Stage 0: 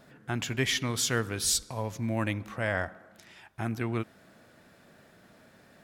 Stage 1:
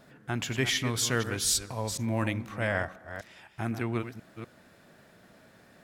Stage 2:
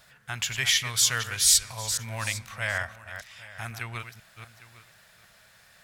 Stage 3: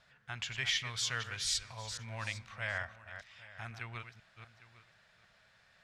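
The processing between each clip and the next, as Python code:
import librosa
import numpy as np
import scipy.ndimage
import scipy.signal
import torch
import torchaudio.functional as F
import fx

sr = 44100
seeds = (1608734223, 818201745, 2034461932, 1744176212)

y1 = fx.reverse_delay(x, sr, ms=247, wet_db=-9.5)
y2 = fx.tone_stack(y1, sr, knobs='10-0-10')
y2 = y2 + 10.0 ** (-17.5 / 20.0) * np.pad(y2, (int(804 * sr / 1000.0), 0))[:len(y2)]
y2 = y2 * librosa.db_to_amplitude(8.5)
y3 = scipy.signal.sosfilt(scipy.signal.butter(2, 4600.0, 'lowpass', fs=sr, output='sos'), y2)
y3 = y3 * librosa.db_to_amplitude(-8.0)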